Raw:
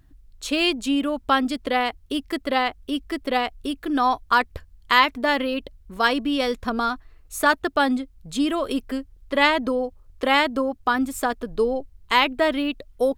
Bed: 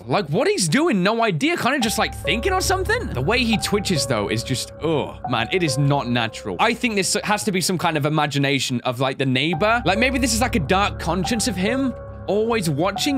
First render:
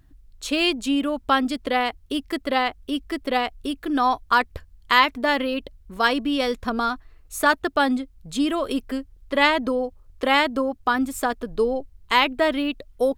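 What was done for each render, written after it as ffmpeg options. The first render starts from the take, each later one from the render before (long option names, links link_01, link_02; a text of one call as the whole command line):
ffmpeg -i in.wav -af anull out.wav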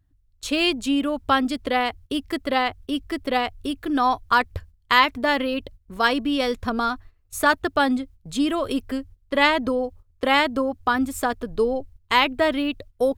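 ffmpeg -i in.wav -af "equalizer=frequency=93:width=2.6:gain=12,agate=range=-14dB:threshold=-41dB:ratio=16:detection=peak" out.wav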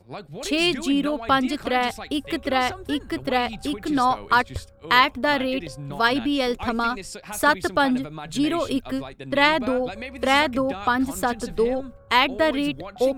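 ffmpeg -i in.wav -i bed.wav -filter_complex "[1:a]volume=-16.5dB[link_01];[0:a][link_01]amix=inputs=2:normalize=0" out.wav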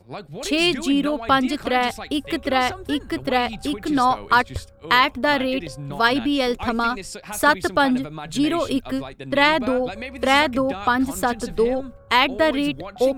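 ffmpeg -i in.wav -af "volume=2dB,alimiter=limit=-3dB:level=0:latency=1" out.wav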